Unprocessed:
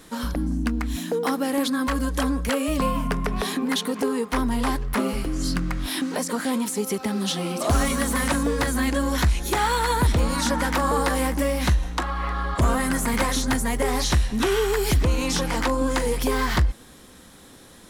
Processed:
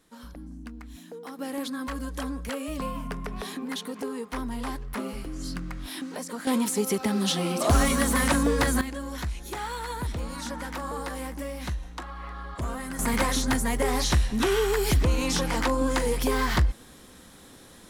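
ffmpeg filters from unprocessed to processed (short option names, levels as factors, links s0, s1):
-af "asetnsamples=n=441:p=0,asendcmd='1.39 volume volume -9dB;6.47 volume volume 0dB;8.81 volume volume -11.5dB;12.99 volume volume -2dB',volume=0.15"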